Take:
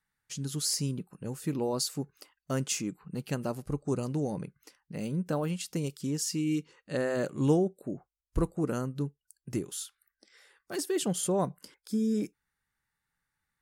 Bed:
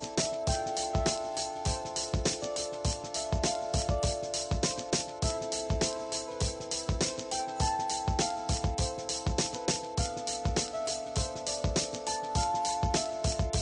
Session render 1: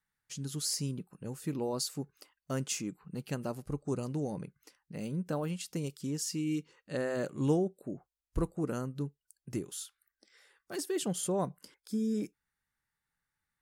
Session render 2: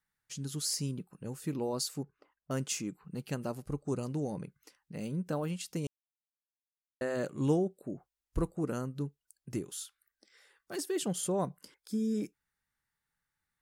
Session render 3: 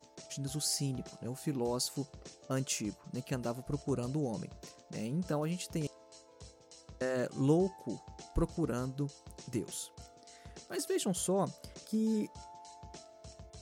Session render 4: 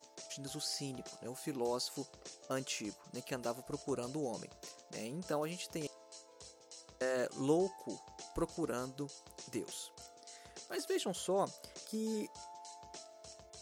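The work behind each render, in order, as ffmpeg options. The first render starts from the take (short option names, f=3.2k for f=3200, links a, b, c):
-af "volume=-3.5dB"
-filter_complex "[0:a]asettb=1/sr,asplit=3[a][b][c];[a]atrim=end=2.034[d];[b]atrim=start=2.03:end=2.51,asetpts=PTS-STARTPTS,afade=t=in:d=0.004:c=qsin,afade=t=out:st=0.476:d=0.004:c=qsin,lowpass=1.4k[e];[c]atrim=start=2.506[f];[d][e]acrossfade=d=0.004:c1=hsin:c2=qsin[g];[g][f]acrossfade=d=0.004:c1=qsin:c2=hsin,asplit=3[h][i][j];[h]atrim=end=5.87,asetpts=PTS-STARTPTS,afade=t=out:st=5.866:d=0.004:c=hsin[k];[i]atrim=start=5.87:end=7.01,asetpts=PTS-STARTPTS,volume=0[l];[j]atrim=start=7.01,asetpts=PTS-STARTPTS,afade=t=in:d=0.004:c=hsin[m];[k][l][m]concat=n=3:v=0:a=1"
-filter_complex "[1:a]volume=-21.5dB[a];[0:a][a]amix=inputs=2:normalize=0"
-filter_complex "[0:a]acrossover=split=4400[a][b];[b]acompressor=threshold=-50dB:ratio=4:attack=1:release=60[c];[a][c]amix=inputs=2:normalize=0,bass=f=250:g=-13,treble=f=4k:g=4"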